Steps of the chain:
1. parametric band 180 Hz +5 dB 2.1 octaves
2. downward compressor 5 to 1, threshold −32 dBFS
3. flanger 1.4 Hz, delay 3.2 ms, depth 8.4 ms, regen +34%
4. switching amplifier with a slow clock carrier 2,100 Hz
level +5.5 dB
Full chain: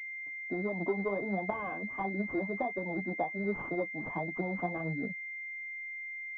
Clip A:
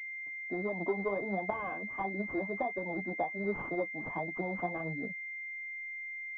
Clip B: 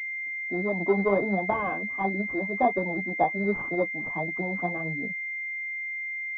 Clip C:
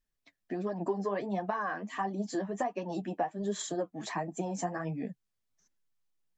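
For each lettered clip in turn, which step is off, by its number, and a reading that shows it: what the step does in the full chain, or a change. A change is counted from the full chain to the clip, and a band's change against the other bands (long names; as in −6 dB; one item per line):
1, 125 Hz band −3.0 dB
2, 125 Hz band −3.0 dB
4, 2 kHz band −9.0 dB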